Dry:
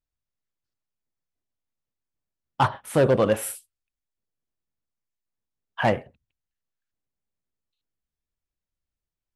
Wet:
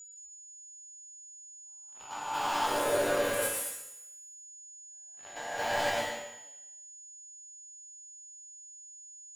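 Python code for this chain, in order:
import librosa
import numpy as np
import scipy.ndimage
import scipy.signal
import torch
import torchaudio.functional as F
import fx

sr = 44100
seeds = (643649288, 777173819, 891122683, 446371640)

y = fx.spec_swells(x, sr, rise_s=1.24)
y = fx.highpass(y, sr, hz=fx.steps((0.0, 410.0), (5.87, 960.0)), slope=12)
y = fx.leveller(y, sr, passes=5)
y = fx.level_steps(y, sr, step_db=12)
y = 10.0 ** (-17.0 / 20.0) * np.tanh(y / 10.0 ** (-17.0 / 20.0))
y = y + 10.0 ** (-32.0 / 20.0) * np.sin(2.0 * np.pi * 6900.0 * np.arange(len(y)) / sr)
y = fx.resonator_bank(y, sr, root=43, chord='minor', decay_s=0.28)
y = fx.echo_wet_highpass(y, sr, ms=90, feedback_pct=56, hz=2000.0, wet_db=-16.0)
y = fx.rev_plate(y, sr, seeds[0], rt60_s=0.82, hf_ratio=0.95, predelay_ms=105, drr_db=-0.5)
y = F.gain(torch.from_numpy(y), -1.5).numpy()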